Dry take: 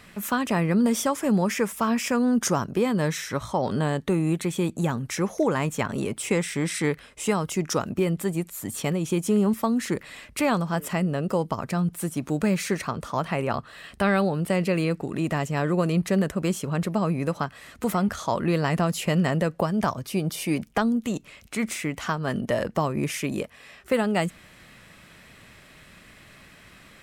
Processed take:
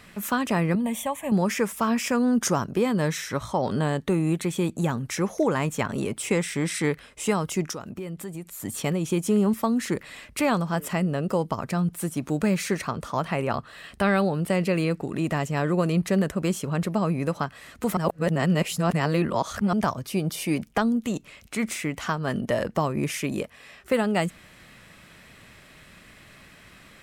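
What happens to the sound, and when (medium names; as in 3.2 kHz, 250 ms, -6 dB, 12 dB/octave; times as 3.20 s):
0.75–1.32 s: static phaser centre 1.4 kHz, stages 6
7.71–8.60 s: compression 2.5:1, threshold -36 dBFS
17.97–19.73 s: reverse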